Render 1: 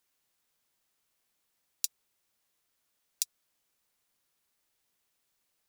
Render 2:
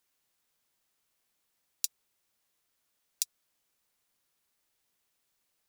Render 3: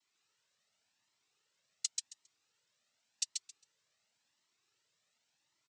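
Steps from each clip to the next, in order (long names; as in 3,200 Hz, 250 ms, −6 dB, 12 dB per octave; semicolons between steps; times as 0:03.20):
no processing that can be heard
cochlear-implant simulation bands 12; on a send: repeating echo 135 ms, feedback 17%, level −3 dB; on the sum: flanger whose copies keep moving one way rising 0.9 Hz; level +3 dB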